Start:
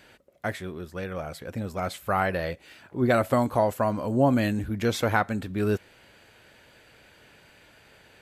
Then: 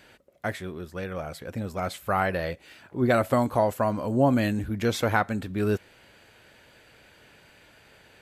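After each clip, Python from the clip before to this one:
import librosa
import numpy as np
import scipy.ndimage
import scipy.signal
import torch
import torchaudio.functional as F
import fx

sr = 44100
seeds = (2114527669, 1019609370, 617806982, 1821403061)

y = x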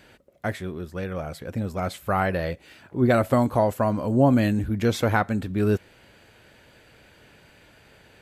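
y = fx.low_shelf(x, sr, hz=420.0, db=5.0)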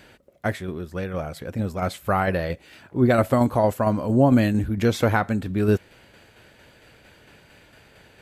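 y = fx.tremolo_shape(x, sr, shape='saw_down', hz=4.4, depth_pct=40)
y = y * librosa.db_to_amplitude(3.5)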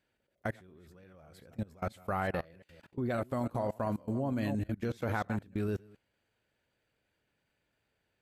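y = fx.reverse_delay(x, sr, ms=175, wet_db=-10.5)
y = fx.level_steps(y, sr, step_db=24)
y = y * librosa.db_to_amplitude(-8.0)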